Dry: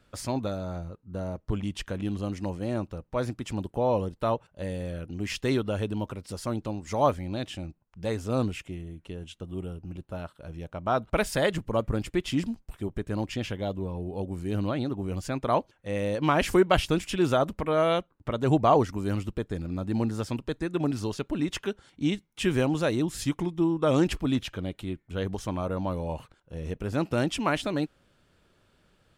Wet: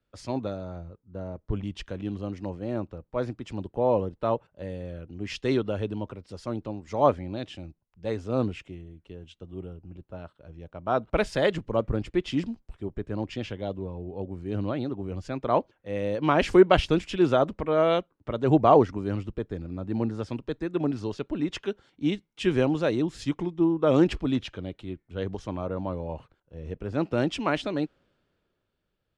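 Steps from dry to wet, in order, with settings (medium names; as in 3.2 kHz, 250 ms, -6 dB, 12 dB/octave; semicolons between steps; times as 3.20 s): low-pass 5 kHz 12 dB/octave; peaking EQ 410 Hz +4 dB 1.4 oct; three bands expanded up and down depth 40%; trim -2 dB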